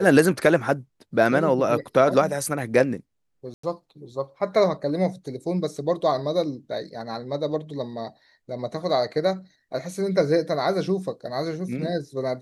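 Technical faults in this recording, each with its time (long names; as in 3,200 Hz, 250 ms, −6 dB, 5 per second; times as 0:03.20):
0:03.54–0:03.63: drop-out 94 ms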